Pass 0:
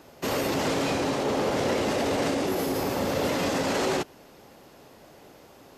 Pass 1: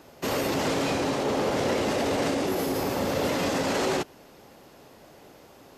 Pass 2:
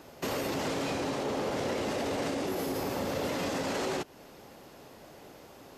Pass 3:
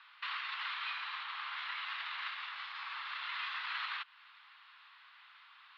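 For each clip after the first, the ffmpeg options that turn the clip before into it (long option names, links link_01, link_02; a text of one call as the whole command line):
ffmpeg -i in.wav -af anull out.wav
ffmpeg -i in.wav -af "acompressor=threshold=-34dB:ratio=2" out.wav
ffmpeg -i in.wav -af "asuperpass=centerf=2100:order=12:qfactor=0.7,volume=1dB" out.wav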